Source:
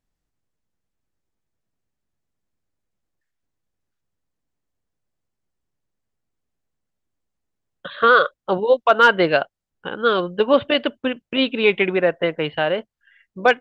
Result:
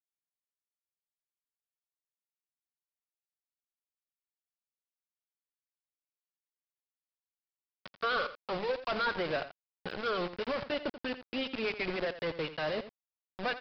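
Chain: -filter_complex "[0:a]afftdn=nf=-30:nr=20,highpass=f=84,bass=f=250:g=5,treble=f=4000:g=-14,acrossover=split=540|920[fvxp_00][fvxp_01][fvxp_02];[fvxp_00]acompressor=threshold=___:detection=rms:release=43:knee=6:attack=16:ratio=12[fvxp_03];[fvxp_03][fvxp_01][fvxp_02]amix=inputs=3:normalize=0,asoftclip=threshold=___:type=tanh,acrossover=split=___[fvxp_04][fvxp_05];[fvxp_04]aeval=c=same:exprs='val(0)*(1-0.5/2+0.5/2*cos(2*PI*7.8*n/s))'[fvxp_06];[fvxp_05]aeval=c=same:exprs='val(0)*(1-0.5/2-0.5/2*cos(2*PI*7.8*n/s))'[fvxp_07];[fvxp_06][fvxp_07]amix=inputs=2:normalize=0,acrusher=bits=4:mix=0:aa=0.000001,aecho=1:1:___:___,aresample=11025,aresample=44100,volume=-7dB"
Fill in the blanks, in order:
-26dB, -19dB, 1400, 85, 0.224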